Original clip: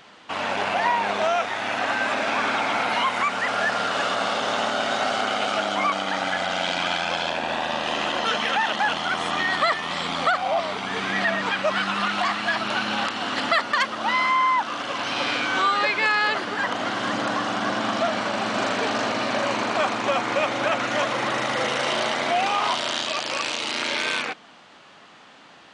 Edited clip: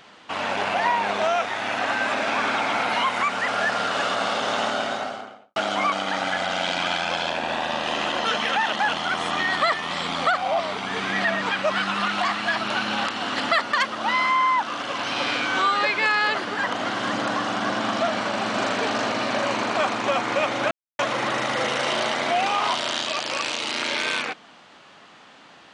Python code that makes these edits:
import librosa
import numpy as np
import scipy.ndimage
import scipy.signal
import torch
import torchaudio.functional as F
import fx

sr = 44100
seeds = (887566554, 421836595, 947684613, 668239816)

y = fx.studio_fade_out(x, sr, start_s=4.66, length_s=0.9)
y = fx.edit(y, sr, fx.silence(start_s=20.71, length_s=0.28), tone=tone)